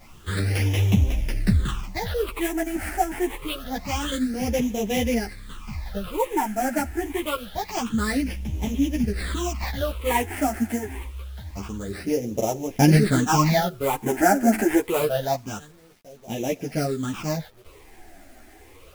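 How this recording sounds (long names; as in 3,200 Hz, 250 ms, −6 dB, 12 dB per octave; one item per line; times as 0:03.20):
aliases and images of a low sample rate 6,600 Hz, jitter 20%
phaser sweep stages 8, 0.26 Hz, lowest notch 140–1,400 Hz
a quantiser's noise floor 10 bits, dither none
a shimmering, thickened sound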